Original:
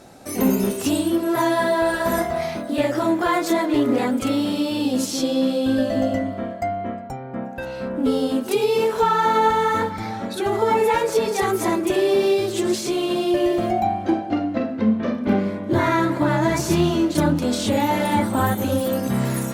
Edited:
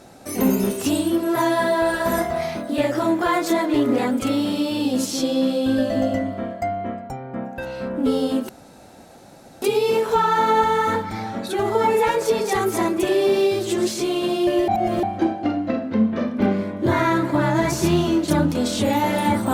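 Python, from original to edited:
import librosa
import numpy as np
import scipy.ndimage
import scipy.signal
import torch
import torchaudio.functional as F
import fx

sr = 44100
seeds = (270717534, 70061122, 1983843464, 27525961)

y = fx.edit(x, sr, fx.insert_room_tone(at_s=8.49, length_s=1.13),
    fx.reverse_span(start_s=13.55, length_s=0.35), tone=tone)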